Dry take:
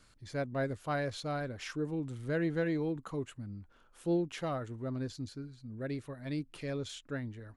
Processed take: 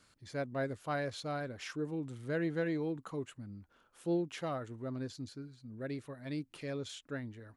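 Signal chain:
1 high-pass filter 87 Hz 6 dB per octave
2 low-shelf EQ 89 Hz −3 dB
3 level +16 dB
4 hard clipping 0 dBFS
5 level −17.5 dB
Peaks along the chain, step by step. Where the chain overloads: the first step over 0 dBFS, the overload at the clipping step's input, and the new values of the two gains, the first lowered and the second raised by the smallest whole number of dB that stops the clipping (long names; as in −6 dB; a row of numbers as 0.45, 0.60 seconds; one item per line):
−21.5, −21.5, −5.5, −5.5, −23.0 dBFS
no step passes full scale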